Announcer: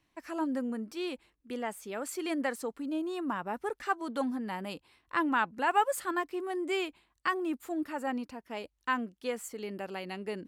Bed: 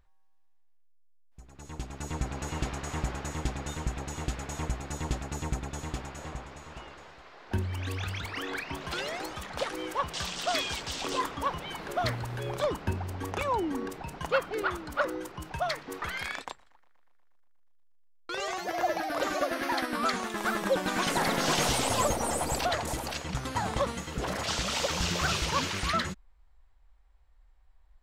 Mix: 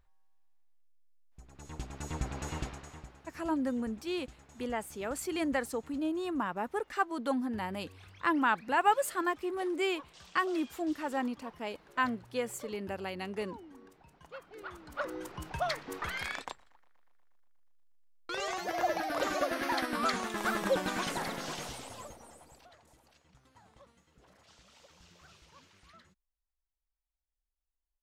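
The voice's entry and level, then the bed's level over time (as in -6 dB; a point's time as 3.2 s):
3.10 s, +0.5 dB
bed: 2.54 s -3 dB
3.14 s -20.5 dB
14.35 s -20.5 dB
15.31 s -2 dB
20.78 s -2 dB
22.7 s -30 dB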